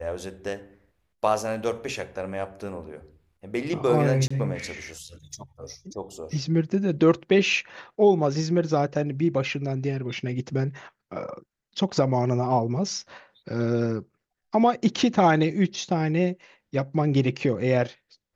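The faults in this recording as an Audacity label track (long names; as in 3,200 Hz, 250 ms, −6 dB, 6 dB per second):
4.280000	4.300000	drop-out 25 ms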